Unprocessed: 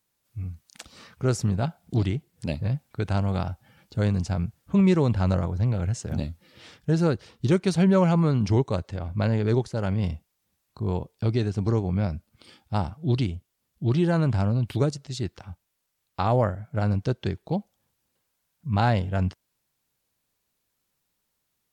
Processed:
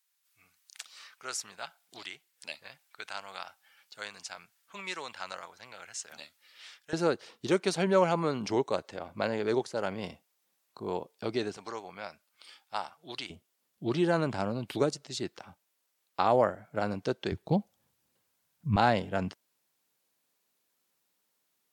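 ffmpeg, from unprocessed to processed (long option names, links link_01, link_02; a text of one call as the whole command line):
ffmpeg -i in.wav -af "asetnsamples=nb_out_samples=441:pad=0,asendcmd='6.93 highpass f 380;11.57 highpass f 930;13.3 highpass f 300;17.32 highpass f 90;18.76 highpass f 240',highpass=1400" out.wav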